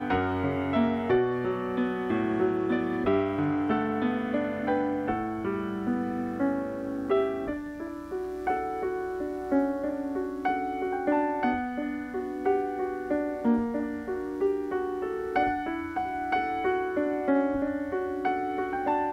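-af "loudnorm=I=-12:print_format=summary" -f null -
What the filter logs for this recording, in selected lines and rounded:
Input Integrated:    -28.8 LUFS
Input True Peak:     -14.4 dBTP
Input LRA:             2.9 LU
Input Threshold:     -38.8 LUFS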